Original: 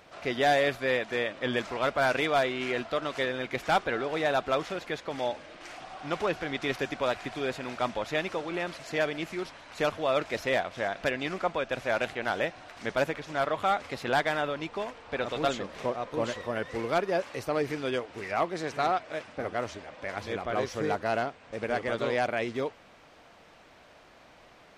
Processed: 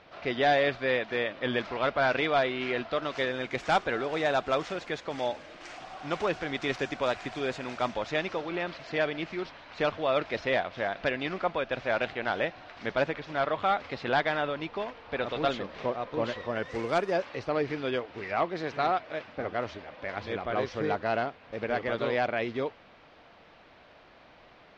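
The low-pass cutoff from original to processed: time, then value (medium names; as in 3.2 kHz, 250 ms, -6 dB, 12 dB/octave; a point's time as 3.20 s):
low-pass 24 dB/octave
2.81 s 4.8 kHz
3.46 s 7.8 kHz
7.73 s 7.8 kHz
8.65 s 4.8 kHz
16.38 s 4.8 kHz
17.04 s 10 kHz
17.27 s 4.7 kHz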